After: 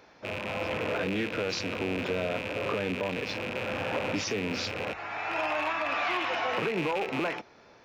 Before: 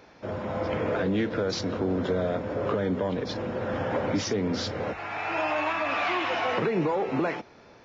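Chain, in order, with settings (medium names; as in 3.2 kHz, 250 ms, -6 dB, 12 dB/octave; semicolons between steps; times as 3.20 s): rattle on loud lows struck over -39 dBFS, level -22 dBFS; bass shelf 420 Hz -5.5 dB; trim -1.5 dB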